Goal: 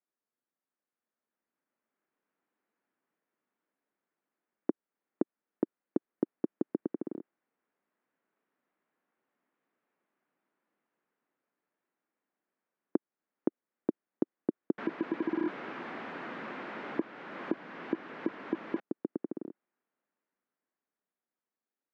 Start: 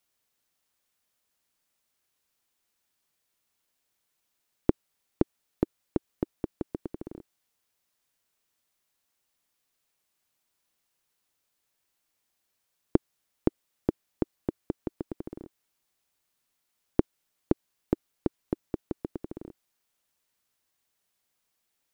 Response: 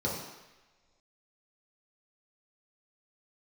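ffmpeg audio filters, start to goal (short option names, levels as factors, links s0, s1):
-filter_complex "[0:a]asettb=1/sr,asplit=3[s0][s1][s2];[s0]atrim=end=14.784[s3];[s1]atrim=start=14.78:end=18.8,asetpts=PTS-STARTPTS,afade=t=in:d=0.004:c=qsin,afade=t=out:st=4.016:d=0.004:c=qsin,aeval=exprs='val(0)+0.5*0.0794*sgn(val(0))':c=same[s4];[s2]atrim=start=18.796[s5];[s3][s4]acrossfade=d=0.004:c1=hsin:c2=qsin[s6];[s6][s5]acrossfade=d=0.004:c1=qsin:c2=hsin,equalizer=f=960:w=0.36:g=-11,dynaudnorm=f=230:g=17:m=5.31,highpass=f=220:w=0.5412,highpass=f=220:w=1.3066,alimiter=limit=0.178:level=0:latency=1:release=484,lowpass=f=1700:w=0.5412,lowpass=f=1700:w=1.3066"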